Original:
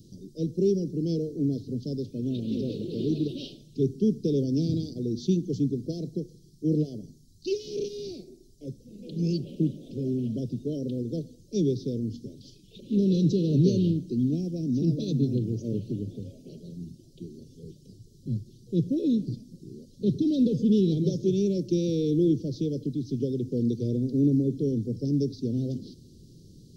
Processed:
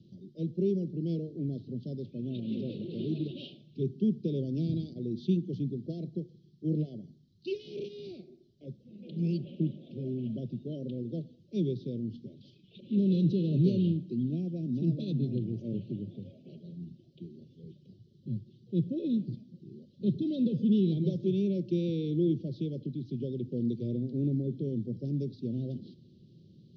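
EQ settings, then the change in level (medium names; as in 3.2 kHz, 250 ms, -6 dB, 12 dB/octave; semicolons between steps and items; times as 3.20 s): cabinet simulation 150–3300 Hz, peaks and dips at 280 Hz -9 dB, 450 Hz -10 dB, 870 Hz -7 dB; 0.0 dB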